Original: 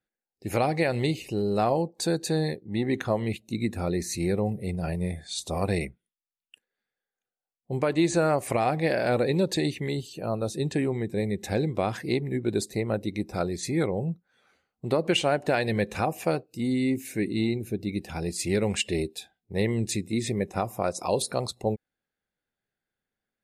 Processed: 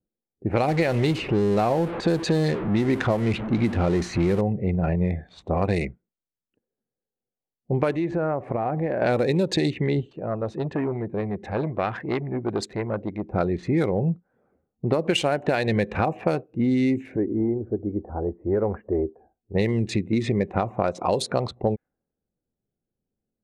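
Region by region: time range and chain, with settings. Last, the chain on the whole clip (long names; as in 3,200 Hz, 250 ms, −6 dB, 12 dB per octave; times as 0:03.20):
0:00.68–0:04.41: converter with a step at zero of −31.5 dBFS + high-shelf EQ 7,700 Hz −6 dB
0:07.91–0:09.02: high-shelf EQ 12,000 Hz −5.5 dB + downward compressor 2.5 to 1, threshold −33 dBFS
0:10.11–0:13.34: tilt shelving filter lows −6.5 dB, about 1,100 Hz + saturating transformer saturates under 1,500 Hz
0:17.16–0:19.55: Butterworth low-pass 1,400 Hz + parametric band 160 Hz −14 dB 1 octave
whole clip: adaptive Wiener filter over 9 samples; low-pass that shuts in the quiet parts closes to 400 Hz, open at −20 dBFS; downward compressor, threshold −27 dBFS; level +8.5 dB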